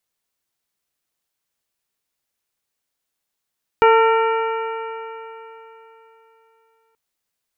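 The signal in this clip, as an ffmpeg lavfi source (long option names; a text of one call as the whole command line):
ffmpeg -f lavfi -i "aevalsrc='0.282*pow(10,-3*t/3.45)*sin(2*PI*448.72*t)+0.224*pow(10,-3*t/3.45)*sin(2*PI*901.72*t)+0.158*pow(10,-3*t/3.45)*sin(2*PI*1363.22*t)+0.0501*pow(10,-3*t/3.45)*sin(2*PI*1837.3*t)+0.0708*pow(10,-3*t/3.45)*sin(2*PI*2327.88*t)+0.0316*pow(10,-3*t/3.45)*sin(2*PI*2838.61*t)':duration=3.13:sample_rate=44100" out.wav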